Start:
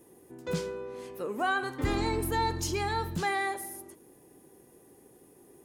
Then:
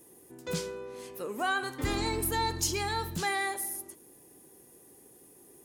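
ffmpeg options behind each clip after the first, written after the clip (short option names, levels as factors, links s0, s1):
-af "highshelf=f=3100:g=9.5,volume=0.75"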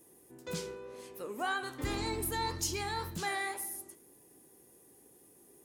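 -af "flanger=delay=9.1:depth=8.3:regen=74:speed=1.9:shape=sinusoidal"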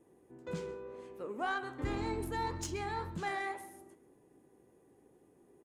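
-af "aexciter=amount=3.5:drive=3.8:freq=6800,aecho=1:1:133:0.141,adynamicsmooth=sensitivity=1.5:basefreq=2200"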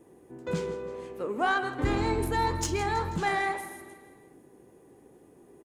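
-af "aecho=1:1:162|324|486|648|810:0.178|0.0942|0.05|0.0265|0.014,volume=2.82"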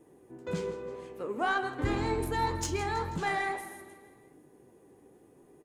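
-af "flanger=delay=6.5:depth=4:regen=71:speed=0.9:shape=sinusoidal,volume=1.19"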